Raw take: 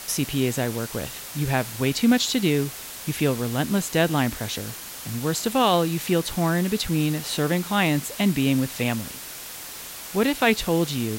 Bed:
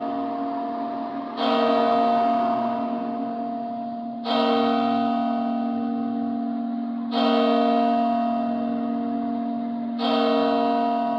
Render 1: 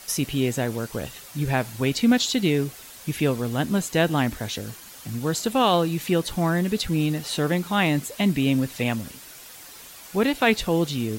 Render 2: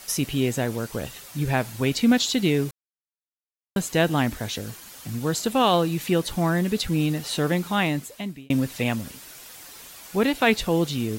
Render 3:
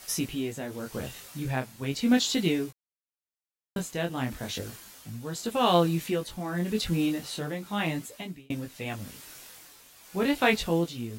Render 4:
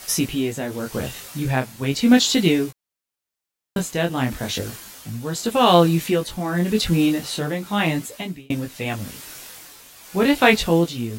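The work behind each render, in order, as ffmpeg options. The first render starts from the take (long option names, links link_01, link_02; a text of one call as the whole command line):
ffmpeg -i in.wav -af "afftdn=noise_reduction=8:noise_floor=-38" out.wav
ffmpeg -i in.wav -filter_complex "[0:a]asplit=4[link_01][link_02][link_03][link_04];[link_01]atrim=end=2.71,asetpts=PTS-STARTPTS,afade=type=out:start_time=2.706:duration=0.004:curve=hsin[link_05];[link_02]atrim=start=2.71:end=3.76,asetpts=PTS-STARTPTS,volume=0[link_06];[link_03]atrim=start=3.76:end=8.5,asetpts=PTS-STARTPTS,afade=type=in:duration=0.004:curve=hsin,afade=type=out:start_time=3.92:duration=0.82[link_07];[link_04]atrim=start=8.5,asetpts=PTS-STARTPTS,afade=type=in:duration=0.004:curve=hsin[link_08];[link_05][link_06][link_07][link_08]concat=n=4:v=0:a=1" out.wav
ffmpeg -i in.wav -af "flanger=delay=17:depth=6.5:speed=0.36,tremolo=f=0.86:d=0.58" out.wav
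ffmpeg -i in.wav -af "volume=8.5dB,alimiter=limit=-2dB:level=0:latency=1" out.wav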